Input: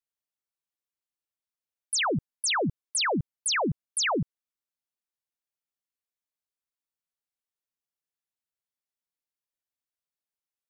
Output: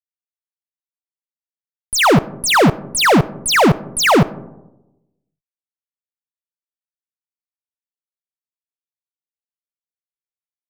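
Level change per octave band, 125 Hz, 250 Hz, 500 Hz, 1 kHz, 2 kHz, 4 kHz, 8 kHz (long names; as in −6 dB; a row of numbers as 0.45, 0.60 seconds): +16.0, +16.0, +16.0, +15.5, +13.5, +10.5, +8.5 decibels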